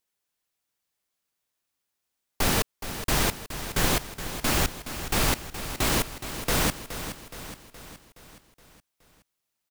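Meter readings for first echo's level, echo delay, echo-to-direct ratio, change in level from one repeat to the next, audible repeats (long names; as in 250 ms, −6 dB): −11.0 dB, 420 ms, −9.5 dB, −5.0 dB, 5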